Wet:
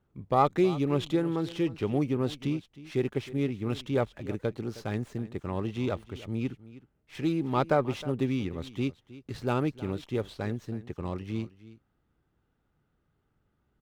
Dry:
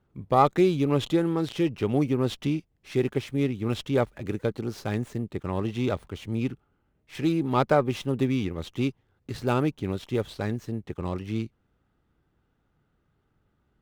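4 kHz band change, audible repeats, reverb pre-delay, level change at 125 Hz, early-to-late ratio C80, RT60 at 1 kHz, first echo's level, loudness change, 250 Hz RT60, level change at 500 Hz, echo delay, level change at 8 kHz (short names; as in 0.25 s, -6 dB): -4.0 dB, 1, none, -3.5 dB, none, none, -17.5 dB, -3.5 dB, none, -3.5 dB, 0.314 s, -5.5 dB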